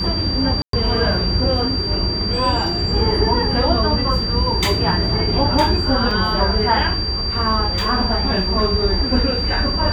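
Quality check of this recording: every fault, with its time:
tone 4700 Hz -22 dBFS
0.62–0.73 gap 0.113 s
6.11 gap 3.7 ms

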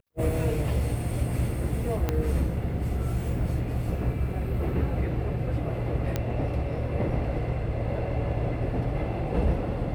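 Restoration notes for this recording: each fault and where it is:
2.09 pop -12 dBFS
6.16 pop -13 dBFS

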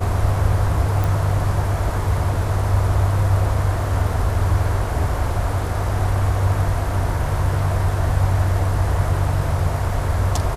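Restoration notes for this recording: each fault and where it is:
1.04 pop

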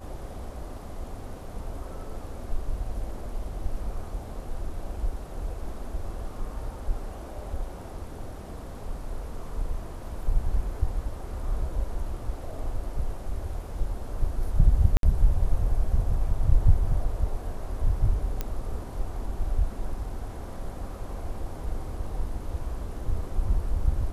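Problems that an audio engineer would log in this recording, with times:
14.97–15.03 gap 62 ms
18.41 pop -15 dBFS

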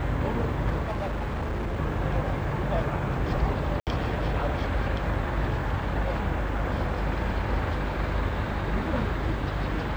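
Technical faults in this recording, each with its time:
buzz 50 Hz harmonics 35 -32 dBFS
0.82–1.8 clipped -26 dBFS
3.8–3.87 gap 68 ms

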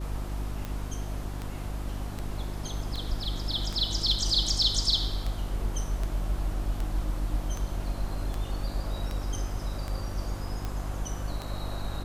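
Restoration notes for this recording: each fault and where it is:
hum 50 Hz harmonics 7 -35 dBFS
tick 78 rpm -20 dBFS

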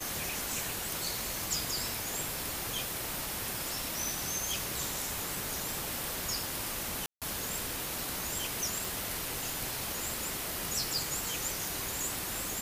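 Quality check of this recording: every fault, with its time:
7.06–7.22 gap 0.157 s
8.85 pop

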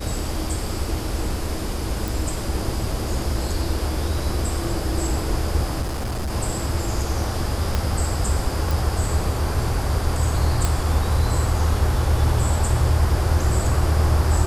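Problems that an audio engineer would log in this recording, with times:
2.08 pop
5.81–6.31 clipped -22.5 dBFS
7.75 pop -8 dBFS
8.71 pop
10.65 pop

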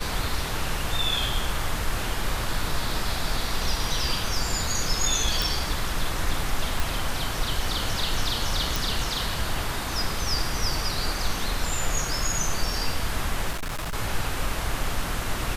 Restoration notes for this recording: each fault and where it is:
5.42 pop
6.8 pop
8.76 pop
13.51–13.95 clipped -27 dBFS

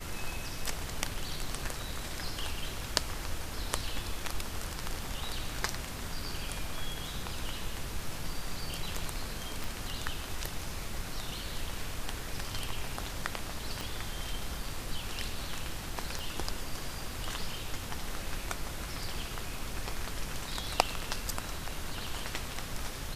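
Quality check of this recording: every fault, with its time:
9.64 pop
13.81 pop
16.19 pop

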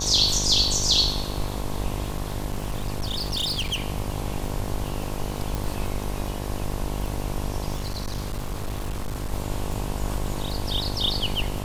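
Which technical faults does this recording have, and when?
buzz 50 Hz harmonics 22 -31 dBFS
crackle 41/s -30 dBFS
2.03–3.8 clipped -22.5 dBFS
5.55 pop
7.75–9.32 clipped -25 dBFS

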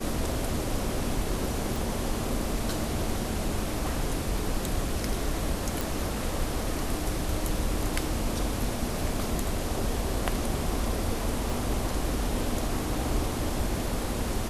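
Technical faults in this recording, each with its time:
1.76 pop
5.81 pop
11.5 pop

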